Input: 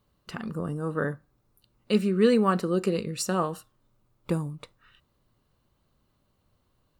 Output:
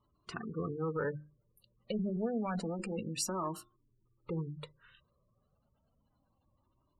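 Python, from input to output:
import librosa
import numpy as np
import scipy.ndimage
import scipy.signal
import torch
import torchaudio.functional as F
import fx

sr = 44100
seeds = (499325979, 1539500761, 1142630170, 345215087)

p1 = fx.diode_clip(x, sr, knee_db=-21.0)
p2 = fx.spec_gate(p1, sr, threshold_db=-20, keep='strong')
p3 = fx.low_shelf(p2, sr, hz=74.0, db=-8.5)
p4 = fx.hum_notches(p3, sr, base_hz=50, count=8)
p5 = fx.over_compress(p4, sr, threshold_db=-31.0, ratio=-0.5)
p6 = p4 + (p5 * librosa.db_to_amplitude(2.0))
p7 = fx.comb_cascade(p6, sr, direction='rising', hz=0.29)
y = p7 * librosa.db_to_amplitude(-6.5)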